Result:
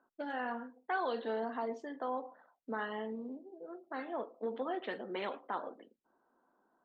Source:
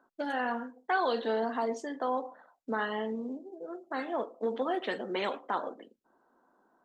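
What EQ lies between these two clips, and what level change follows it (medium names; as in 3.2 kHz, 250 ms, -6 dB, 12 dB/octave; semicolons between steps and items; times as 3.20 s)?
low-pass 3.5 kHz 12 dB/octave; -6.0 dB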